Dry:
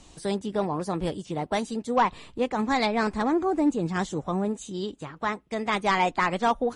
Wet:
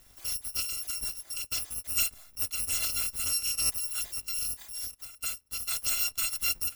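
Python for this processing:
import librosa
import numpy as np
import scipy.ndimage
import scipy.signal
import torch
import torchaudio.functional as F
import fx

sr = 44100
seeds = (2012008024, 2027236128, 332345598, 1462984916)

y = fx.bit_reversed(x, sr, seeds[0], block=256)
y = y * 10.0 ** (-6.0 / 20.0)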